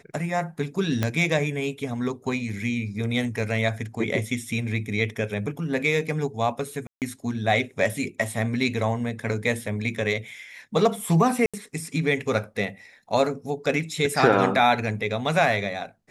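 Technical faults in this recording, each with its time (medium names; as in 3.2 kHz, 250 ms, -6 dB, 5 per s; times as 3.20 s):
1.03 s: pop -10 dBFS
6.87–7.02 s: dropout 148 ms
11.46–11.54 s: dropout 76 ms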